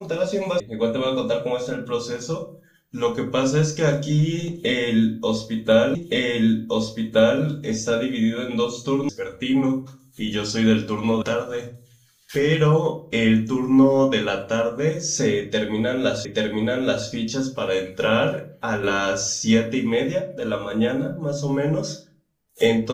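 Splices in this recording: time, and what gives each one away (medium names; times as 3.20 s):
0.60 s: sound stops dead
5.95 s: repeat of the last 1.47 s
9.09 s: sound stops dead
11.22 s: sound stops dead
16.25 s: repeat of the last 0.83 s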